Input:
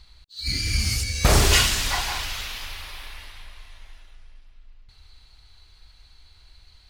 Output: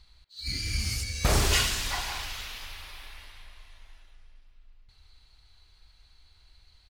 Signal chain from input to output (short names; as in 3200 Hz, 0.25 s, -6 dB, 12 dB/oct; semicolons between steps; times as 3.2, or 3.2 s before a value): speakerphone echo 0.11 s, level -12 dB; gain -6.5 dB